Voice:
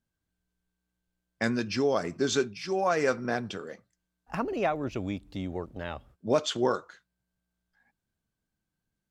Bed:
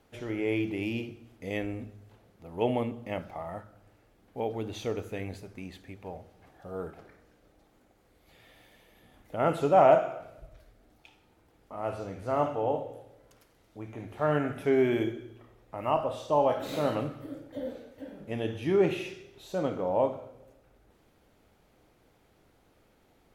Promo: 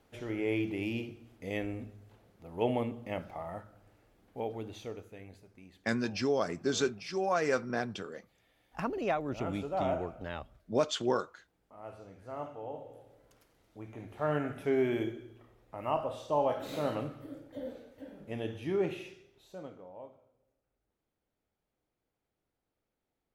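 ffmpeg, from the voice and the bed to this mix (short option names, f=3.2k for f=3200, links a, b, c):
-filter_complex "[0:a]adelay=4450,volume=-3.5dB[a];[1:a]volume=6dB,afade=t=out:st=4.2:d=0.89:silence=0.298538,afade=t=in:st=12.72:d=0.41:silence=0.375837,afade=t=out:st=18.38:d=1.54:silence=0.133352[b];[a][b]amix=inputs=2:normalize=0"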